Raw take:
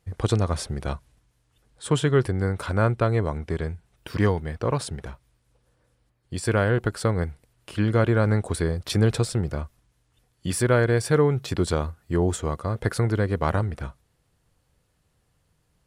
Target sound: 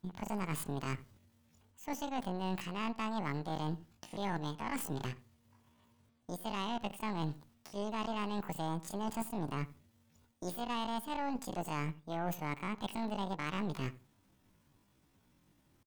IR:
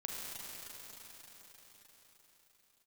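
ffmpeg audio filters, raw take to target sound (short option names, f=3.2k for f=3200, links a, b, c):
-filter_complex "[0:a]areverse,acompressor=threshold=-34dB:ratio=10,areverse,aeval=exprs='0.075*(cos(1*acos(clip(val(0)/0.075,-1,1)))-cos(1*PI/2))+0.00841*(cos(2*acos(clip(val(0)/0.075,-1,1)))-cos(2*PI/2))+0.00596*(cos(3*acos(clip(val(0)/0.075,-1,1)))-cos(3*PI/2))+0.00119*(cos(5*acos(clip(val(0)/0.075,-1,1)))-cos(5*PI/2))+0.00531*(cos(6*acos(clip(val(0)/0.075,-1,1)))-cos(6*PI/2))':c=same,asetrate=85689,aresample=44100,atempo=0.514651,asplit=2[a][b];[b]adelay=85,lowpass=f=1.3k:p=1,volume=-17dB,asplit=2[c][d];[d]adelay=85,lowpass=f=1.3k:p=1,volume=0.21[e];[a][c][e]amix=inputs=3:normalize=0"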